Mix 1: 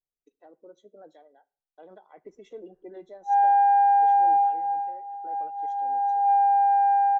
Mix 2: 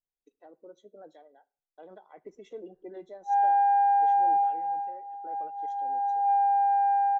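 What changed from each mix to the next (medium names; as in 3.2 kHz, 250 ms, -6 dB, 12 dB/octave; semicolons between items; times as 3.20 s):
background -3.5 dB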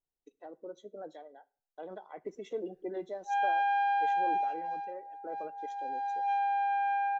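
speech +5.0 dB; background: remove resonant low-pass 930 Hz, resonance Q 2.2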